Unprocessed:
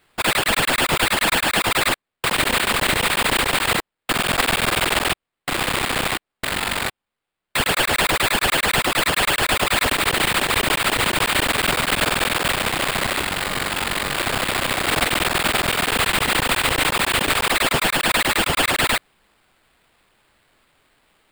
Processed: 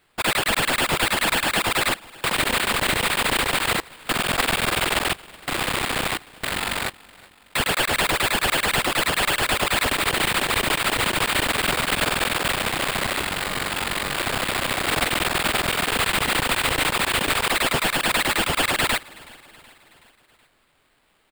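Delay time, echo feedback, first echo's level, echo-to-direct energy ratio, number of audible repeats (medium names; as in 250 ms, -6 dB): 374 ms, 56%, -23.0 dB, -21.5 dB, 3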